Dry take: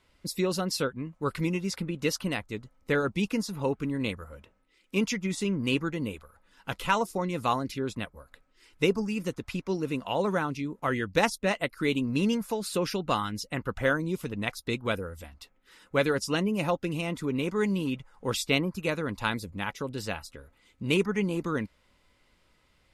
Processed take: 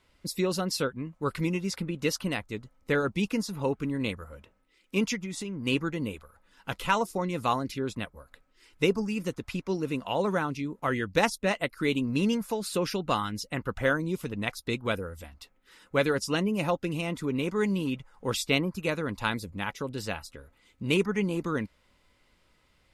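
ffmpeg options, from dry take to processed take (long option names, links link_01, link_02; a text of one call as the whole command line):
ffmpeg -i in.wav -filter_complex "[0:a]asplit=3[link_01][link_02][link_03];[link_01]afade=type=out:start_time=5.15:duration=0.02[link_04];[link_02]acompressor=threshold=-32dB:ratio=5:attack=3.2:release=140:knee=1:detection=peak,afade=type=in:start_time=5.15:duration=0.02,afade=type=out:start_time=5.65:duration=0.02[link_05];[link_03]afade=type=in:start_time=5.65:duration=0.02[link_06];[link_04][link_05][link_06]amix=inputs=3:normalize=0" out.wav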